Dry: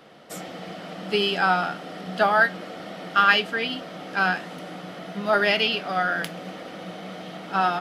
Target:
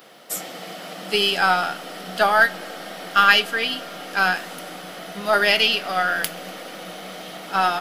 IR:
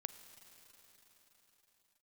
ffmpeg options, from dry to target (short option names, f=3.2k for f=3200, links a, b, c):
-filter_complex "[0:a]aemphasis=mode=production:type=bsi,aeval=exprs='0.668*(cos(1*acos(clip(val(0)/0.668,-1,1)))-cos(1*PI/2))+0.00841*(cos(4*acos(clip(val(0)/0.668,-1,1)))-cos(4*PI/2))+0.00596*(cos(8*acos(clip(val(0)/0.668,-1,1)))-cos(8*PI/2))':c=same,asplit=2[a][b];[1:a]atrim=start_sample=2205[c];[b][c]afir=irnorm=-1:irlink=0,volume=-7dB[d];[a][d]amix=inputs=2:normalize=0"